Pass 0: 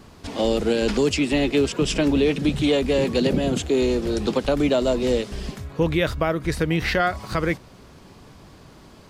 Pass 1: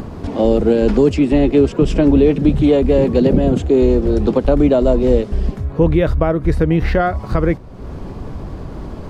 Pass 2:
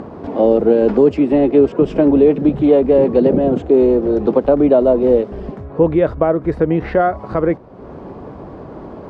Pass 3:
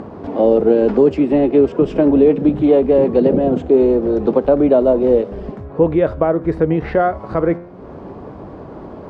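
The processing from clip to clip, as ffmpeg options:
-af "tiltshelf=f=1.5k:g=9.5,acompressor=mode=upward:threshold=-19dB:ratio=2.5,asubboost=boost=2:cutoff=82"
-af "bandpass=f=590:t=q:w=0.66:csg=0,volume=3dB"
-af "flanger=delay=9.4:depth=4.1:regen=89:speed=0.36:shape=triangular,volume=4dB"

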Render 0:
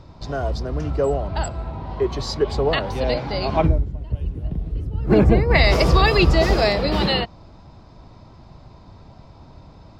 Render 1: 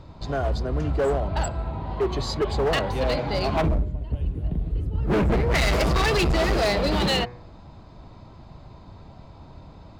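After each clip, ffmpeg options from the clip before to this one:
-af "equalizer=f=5.5k:t=o:w=0.23:g=-10,bandreject=f=121.7:t=h:w=4,bandreject=f=243.4:t=h:w=4,bandreject=f=365.1:t=h:w=4,bandreject=f=486.8:t=h:w=4,bandreject=f=608.5:t=h:w=4,bandreject=f=730.2:t=h:w=4,bandreject=f=851.9:t=h:w=4,bandreject=f=973.6:t=h:w=4,bandreject=f=1.0953k:t=h:w=4,bandreject=f=1.217k:t=h:w=4,bandreject=f=1.3387k:t=h:w=4,bandreject=f=1.4604k:t=h:w=4,bandreject=f=1.5821k:t=h:w=4,bandreject=f=1.7038k:t=h:w=4,bandreject=f=1.8255k:t=h:w=4,bandreject=f=1.9472k:t=h:w=4,bandreject=f=2.0689k:t=h:w=4,bandreject=f=2.1906k:t=h:w=4,bandreject=f=2.3123k:t=h:w=4,bandreject=f=2.434k:t=h:w=4,bandreject=f=2.5557k:t=h:w=4,asoftclip=type=hard:threshold=-18.5dB"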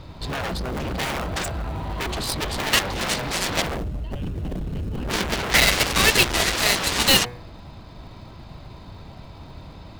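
-filter_complex "[0:a]equalizer=f=3.2k:w=0.54:g=8.5,asplit=2[a][b];[b]acrusher=samples=33:mix=1:aa=0.000001,volume=-10.5dB[c];[a][c]amix=inputs=2:normalize=0,aeval=exprs='0.473*(cos(1*acos(clip(val(0)/0.473,-1,1)))-cos(1*PI/2))+0.15*(cos(7*acos(clip(val(0)/0.473,-1,1)))-cos(7*PI/2))':c=same"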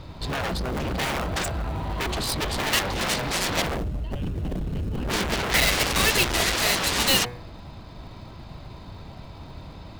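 -af "asoftclip=type=hard:threshold=-14dB"

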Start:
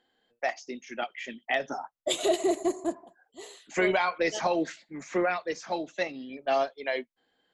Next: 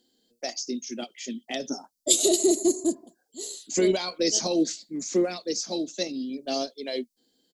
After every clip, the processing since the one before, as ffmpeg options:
-af "firequalizer=gain_entry='entry(140,0);entry(230,10);entry(800,-10);entry(1800,-12);entry(4600,15)':delay=0.05:min_phase=1"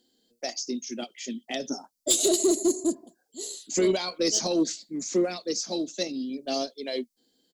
-af "asoftclip=type=tanh:threshold=-13dB"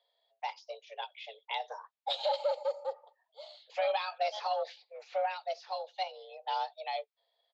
-af "highpass=f=430:t=q:w=0.5412,highpass=f=430:t=q:w=1.307,lowpass=f=3.5k:t=q:w=0.5176,lowpass=f=3.5k:t=q:w=0.7071,lowpass=f=3.5k:t=q:w=1.932,afreqshift=200,volume=-2dB"

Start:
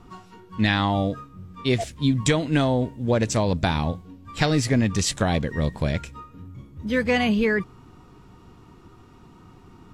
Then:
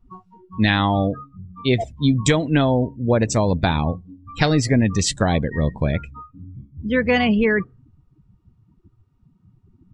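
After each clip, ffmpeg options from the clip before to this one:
-af "afftdn=nr=28:nf=-34,volume=3.5dB"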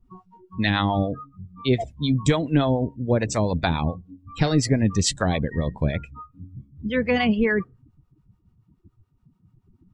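-filter_complex "[0:a]acrossover=split=550[a][b];[a]aeval=exprs='val(0)*(1-0.7/2+0.7/2*cos(2*PI*7*n/s))':c=same[c];[b]aeval=exprs='val(0)*(1-0.7/2-0.7/2*cos(2*PI*7*n/s))':c=same[d];[c][d]amix=inputs=2:normalize=0"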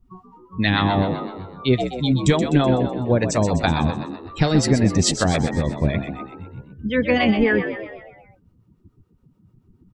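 -filter_complex "[0:a]asplit=7[a][b][c][d][e][f][g];[b]adelay=126,afreqshift=61,volume=-9dB[h];[c]adelay=252,afreqshift=122,volume=-14.5dB[i];[d]adelay=378,afreqshift=183,volume=-20dB[j];[e]adelay=504,afreqshift=244,volume=-25.5dB[k];[f]adelay=630,afreqshift=305,volume=-31.1dB[l];[g]adelay=756,afreqshift=366,volume=-36.6dB[m];[a][h][i][j][k][l][m]amix=inputs=7:normalize=0,volume=2.5dB"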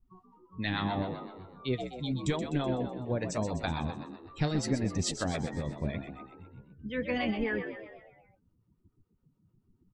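-af "flanger=delay=0.8:depth=6.7:regen=72:speed=0.8:shape=triangular,volume=-8.5dB"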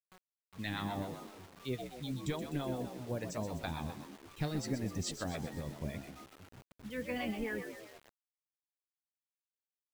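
-af "acrusher=bits=7:mix=0:aa=0.000001,volume=-6.5dB"

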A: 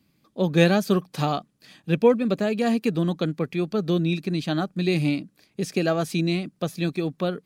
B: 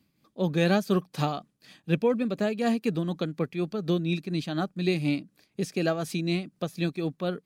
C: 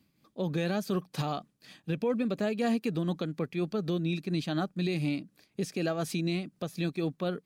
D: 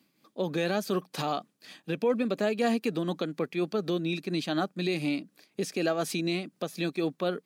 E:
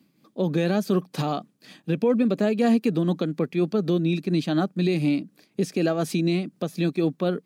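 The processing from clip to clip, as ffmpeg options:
-af "tremolo=f=4.1:d=0.47,volume=-2dB"
-af "alimiter=limit=-21dB:level=0:latency=1:release=86"
-af "highpass=250,volume=4dB"
-af "equalizer=f=140:w=0.41:g=10.5"

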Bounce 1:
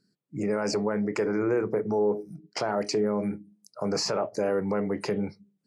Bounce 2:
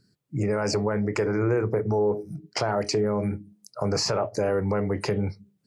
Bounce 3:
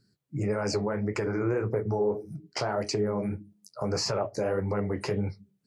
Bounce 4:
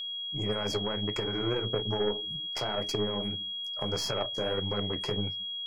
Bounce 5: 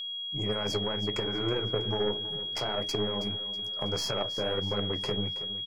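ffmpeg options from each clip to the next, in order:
-filter_complex "[0:a]lowshelf=f=140:t=q:w=1.5:g=9.5,asplit=2[a][b];[b]acompressor=threshold=-34dB:ratio=6,volume=0dB[c];[a][c]amix=inputs=2:normalize=0"
-af "flanger=delay=7.3:depth=7.9:regen=-39:speed=1.7:shape=triangular"
-af "aeval=exprs='0.158*(cos(1*acos(clip(val(0)/0.158,-1,1)))-cos(1*PI/2))+0.0282*(cos(3*acos(clip(val(0)/0.158,-1,1)))-cos(3*PI/2))+0.00708*(cos(6*acos(clip(val(0)/0.158,-1,1)))-cos(6*PI/2))':c=same,aeval=exprs='val(0)+0.02*sin(2*PI*3300*n/s)':c=same"
-af "aecho=1:1:323|646|969|1292:0.2|0.0878|0.0386|0.017"

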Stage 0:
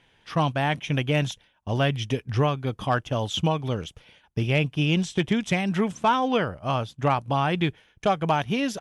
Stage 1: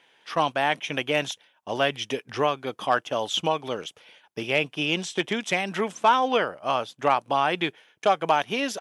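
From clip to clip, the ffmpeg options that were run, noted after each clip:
-af "highpass=380,volume=2.5dB"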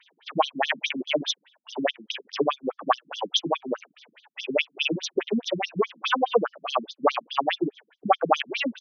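-af "afftfilt=real='re*between(b*sr/1024,200*pow(4800/200,0.5+0.5*sin(2*PI*4.8*pts/sr))/1.41,200*pow(4800/200,0.5+0.5*sin(2*PI*4.8*pts/sr))*1.41)':imag='im*between(b*sr/1024,200*pow(4800/200,0.5+0.5*sin(2*PI*4.8*pts/sr))/1.41,200*pow(4800/200,0.5+0.5*sin(2*PI*4.8*pts/sr))*1.41)':win_size=1024:overlap=0.75,volume=7.5dB"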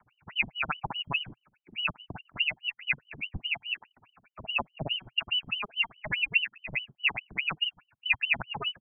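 -af "lowpass=f=2.7k:t=q:w=0.5098,lowpass=f=2.7k:t=q:w=0.6013,lowpass=f=2.7k:t=q:w=0.9,lowpass=f=2.7k:t=q:w=2.563,afreqshift=-3200,equalizer=f=125:t=o:w=1:g=10,equalizer=f=500:t=o:w=1:g=-12,equalizer=f=2k:t=o:w=1:g=-8"

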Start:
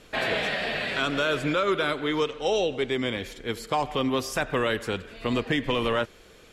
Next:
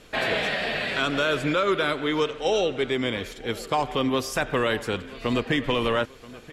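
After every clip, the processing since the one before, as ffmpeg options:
-filter_complex "[0:a]asplit=2[a][b];[b]adelay=980,lowpass=f=4.2k:p=1,volume=-19dB,asplit=2[c][d];[d]adelay=980,lowpass=f=4.2k:p=1,volume=0.46,asplit=2[e][f];[f]adelay=980,lowpass=f=4.2k:p=1,volume=0.46,asplit=2[g][h];[h]adelay=980,lowpass=f=4.2k:p=1,volume=0.46[i];[a][c][e][g][i]amix=inputs=5:normalize=0,volume=1.5dB"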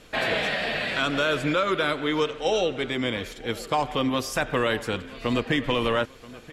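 -af "bandreject=f=400:w=13"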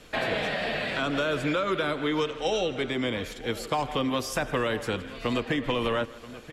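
-filter_complex "[0:a]acrossover=split=290|1100[a][b][c];[a]acompressor=threshold=-31dB:ratio=4[d];[b]acompressor=threshold=-27dB:ratio=4[e];[c]acompressor=threshold=-31dB:ratio=4[f];[d][e][f]amix=inputs=3:normalize=0,aecho=1:1:159|318|477:0.0944|0.0415|0.0183"

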